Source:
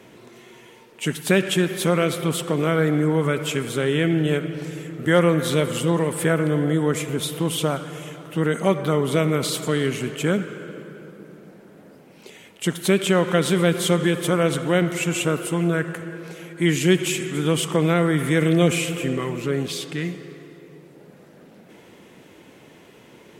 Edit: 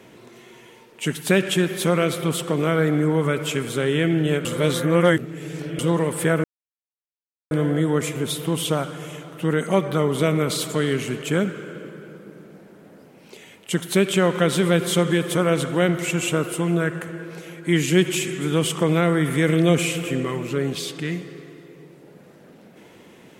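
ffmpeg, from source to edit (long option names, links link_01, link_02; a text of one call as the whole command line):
ffmpeg -i in.wav -filter_complex "[0:a]asplit=4[link_01][link_02][link_03][link_04];[link_01]atrim=end=4.452[link_05];[link_02]atrim=start=4.448:end=5.792,asetpts=PTS-STARTPTS,areverse[link_06];[link_03]atrim=start=5.788:end=6.44,asetpts=PTS-STARTPTS,afade=type=out:start_time=0.648:duration=0.004:curve=hsin,apad=pad_dur=1.07[link_07];[link_04]atrim=start=6.44,asetpts=PTS-STARTPTS,afade=type=in:duration=0.004:curve=hsin[link_08];[link_05][link_06]acrossfade=duration=0.004:curve1=hsin:curve2=hsin[link_09];[link_07][link_08]concat=n=2:v=0:a=1[link_10];[link_09][link_10]acrossfade=duration=0.004:curve1=hsin:curve2=hsin" out.wav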